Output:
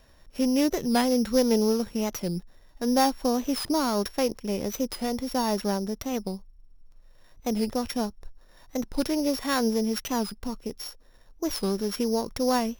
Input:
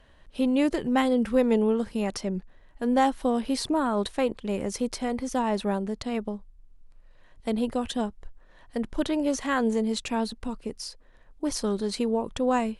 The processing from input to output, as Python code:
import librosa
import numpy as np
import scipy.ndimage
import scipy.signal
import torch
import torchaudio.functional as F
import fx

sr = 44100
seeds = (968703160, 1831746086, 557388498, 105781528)

y = np.r_[np.sort(x[:len(x) // 8 * 8].reshape(-1, 8), axis=1).ravel(), x[len(x) // 8 * 8:]]
y = fx.record_warp(y, sr, rpm=45.0, depth_cents=160.0)